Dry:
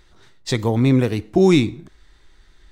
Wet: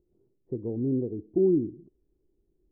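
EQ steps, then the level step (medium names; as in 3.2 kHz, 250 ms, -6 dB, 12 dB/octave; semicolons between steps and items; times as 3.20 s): four-pole ladder low-pass 450 Hz, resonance 50%; distance through air 400 m; bass shelf 72 Hz -10.5 dB; -4.0 dB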